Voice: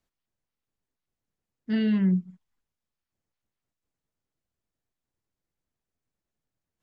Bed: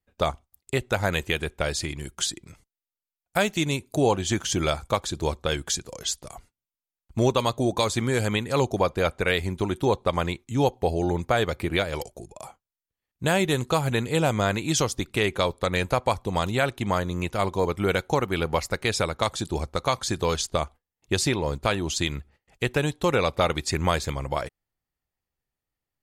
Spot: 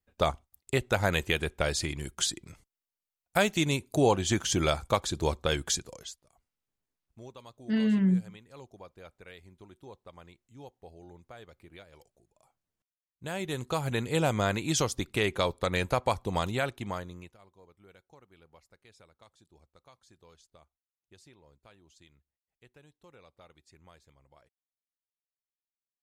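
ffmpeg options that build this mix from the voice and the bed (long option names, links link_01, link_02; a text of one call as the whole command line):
ffmpeg -i stem1.wav -i stem2.wav -filter_complex "[0:a]adelay=6000,volume=-1.5dB[link_01];[1:a]volume=20dB,afade=type=out:start_time=5.72:duration=0.45:silence=0.0630957,afade=type=in:start_time=13:duration=1.17:silence=0.0794328,afade=type=out:start_time=16.35:duration=1.03:silence=0.0334965[link_02];[link_01][link_02]amix=inputs=2:normalize=0" out.wav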